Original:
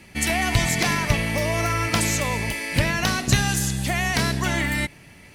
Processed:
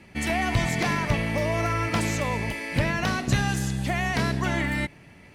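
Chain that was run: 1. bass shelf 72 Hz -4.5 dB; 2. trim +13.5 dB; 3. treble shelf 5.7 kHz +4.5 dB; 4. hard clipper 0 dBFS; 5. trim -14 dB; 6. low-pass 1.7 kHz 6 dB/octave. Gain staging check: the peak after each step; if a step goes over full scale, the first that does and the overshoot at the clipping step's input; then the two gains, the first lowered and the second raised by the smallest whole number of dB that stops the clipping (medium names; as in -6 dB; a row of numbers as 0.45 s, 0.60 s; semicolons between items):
-7.0 dBFS, +6.5 dBFS, +7.5 dBFS, 0.0 dBFS, -14.0 dBFS, -14.0 dBFS; step 2, 7.5 dB; step 2 +5.5 dB, step 5 -6 dB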